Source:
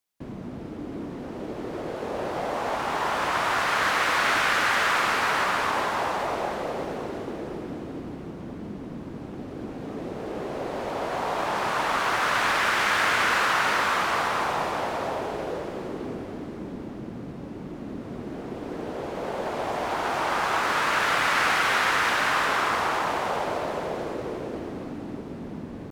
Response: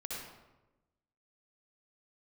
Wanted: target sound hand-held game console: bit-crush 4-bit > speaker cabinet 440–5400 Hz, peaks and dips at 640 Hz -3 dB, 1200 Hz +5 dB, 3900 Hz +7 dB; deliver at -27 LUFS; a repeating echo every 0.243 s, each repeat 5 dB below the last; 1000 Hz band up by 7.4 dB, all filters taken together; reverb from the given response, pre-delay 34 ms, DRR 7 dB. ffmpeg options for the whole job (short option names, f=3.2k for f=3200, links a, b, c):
-filter_complex "[0:a]equalizer=f=1k:t=o:g=6.5,aecho=1:1:243|486|729|972|1215|1458|1701:0.562|0.315|0.176|0.0988|0.0553|0.031|0.0173,asplit=2[a][b];[1:a]atrim=start_sample=2205,adelay=34[c];[b][c]afir=irnorm=-1:irlink=0,volume=-7.5dB[d];[a][d]amix=inputs=2:normalize=0,acrusher=bits=3:mix=0:aa=0.000001,highpass=440,equalizer=f=640:t=q:w=4:g=-3,equalizer=f=1.2k:t=q:w=4:g=5,equalizer=f=3.9k:t=q:w=4:g=7,lowpass=f=5.4k:w=0.5412,lowpass=f=5.4k:w=1.3066,volume=-10.5dB"